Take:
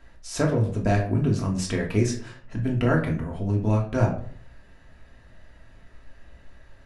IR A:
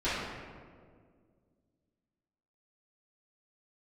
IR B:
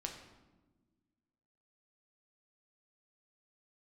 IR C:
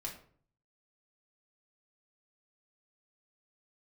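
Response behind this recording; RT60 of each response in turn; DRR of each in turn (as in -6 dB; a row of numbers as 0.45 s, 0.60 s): C; 1.9 s, no single decay rate, 0.50 s; -15.0 dB, 1.5 dB, -1.5 dB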